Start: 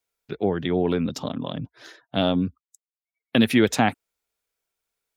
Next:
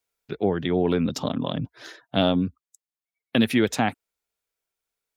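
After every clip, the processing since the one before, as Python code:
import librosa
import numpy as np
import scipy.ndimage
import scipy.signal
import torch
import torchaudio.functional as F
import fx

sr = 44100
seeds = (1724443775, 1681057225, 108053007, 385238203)

y = fx.rider(x, sr, range_db=3, speed_s=0.5)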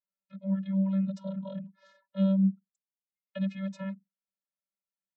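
y = fx.vocoder(x, sr, bands=32, carrier='square', carrier_hz=193.0)
y = F.gain(torch.from_numpy(y), -5.0).numpy()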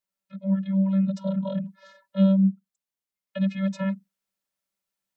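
y = fx.rider(x, sr, range_db=3, speed_s=0.5)
y = F.gain(torch.from_numpy(y), 6.5).numpy()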